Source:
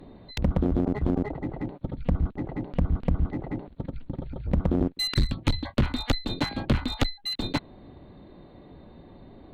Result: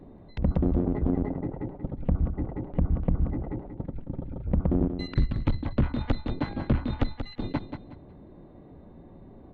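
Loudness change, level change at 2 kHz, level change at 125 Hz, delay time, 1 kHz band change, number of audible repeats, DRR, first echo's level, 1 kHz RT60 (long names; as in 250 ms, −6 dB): −1.0 dB, −7.0 dB, 0.0 dB, 183 ms, −3.0 dB, 3, no reverb audible, −8.5 dB, no reverb audible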